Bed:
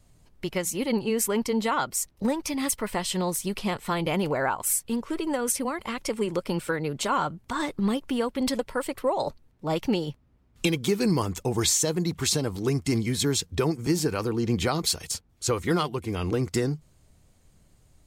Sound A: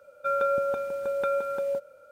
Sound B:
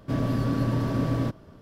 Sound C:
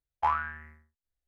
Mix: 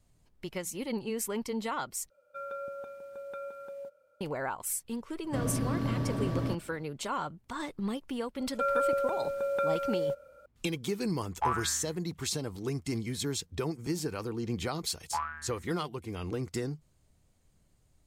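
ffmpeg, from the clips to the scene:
-filter_complex "[1:a]asplit=2[a][b];[3:a]asplit=2[c][d];[0:a]volume=-8.5dB,asplit=2[e][f];[e]atrim=end=2.104[g];[a]atrim=end=2.11,asetpts=PTS-STARTPTS,volume=-14dB[h];[f]atrim=start=4.206[i];[2:a]atrim=end=1.61,asetpts=PTS-STARTPTS,volume=-6dB,afade=t=in:d=0.004:c=hsin,afade=t=out:st=1.606:d=0.004:c=hsin,adelay=5240[j];[b]atrim=end=2.11,asetpts=PTS-STARTPTS,volume=-2.5dB,afade=t=in:d=0.004:c=hsin,afade=t=out:st=2.106:d=0.004:c=hsin,adelay=8350[k];[c]atrim=end=1.27,asetpts=PTS-STARTPTS,volume=-3dB,afade=t=in:d=0.004:c=hsin,afade=t=out:st=1.266:d=0.004:c=hsin,adelay=11190[l];[d]atrim=end=1.27,asetpts=PTS-STARTPTS,volume=-7dB,afade=t=in:d=0.004:c=hsin,afade=t=out:st=1.266:d=0.004:c=hsin,adelay=14900[m];[g][h]acrossfade=d=0.004:c1=hsin:c2=hsin[n];[n][i]acrossfade=d=0.004:c1=hsin:c2=hsin[o];[o][j][k][l][m]amix=inputs=5:normalize=0"

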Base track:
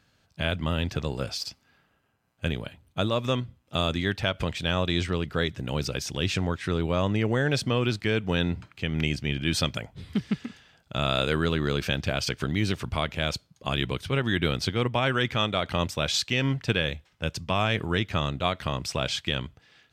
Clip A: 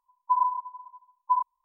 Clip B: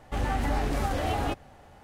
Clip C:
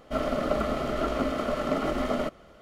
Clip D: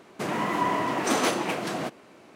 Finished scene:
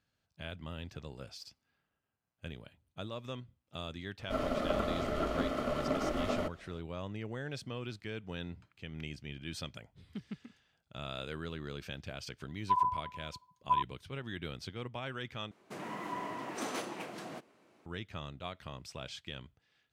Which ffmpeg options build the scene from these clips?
-filter_complex "[0:a]volume=-16dB[a];[1:a]highpass=870[b];[a]asplit=2[c][d];[c]atrim=end=15.514[e];[4:a]atrim=end=2.35,asetpts=PTS-STARTPTS,volume=-14dB[f];[d]atrim=start=17.856[g];[3:a]atrim=end=2.61,asetpts=PTS-STARTPTS,volume=-6dB,afade=t=in:d=0.004:c=hsin,afade=t=out:st=2.606:d=0.004:c=hsin,adelay=4190[h];[b]atrim=end=1.64,asetpts=PTS-STARTPTS,volume=-3.5dB,afade=t=in:d=0.004:c=hsin,afade=t=out:st=1.636:d=0.004:c=hsin,adelay=12400[i];[e][f]acrossfade=d=0.004:c1=hsin:c2=hsin[j];[j][g]acrossfade=d=0.004:c1=hsin:c2=hsin[k];[k][h][i]amix=inputs=3:normalize=0"

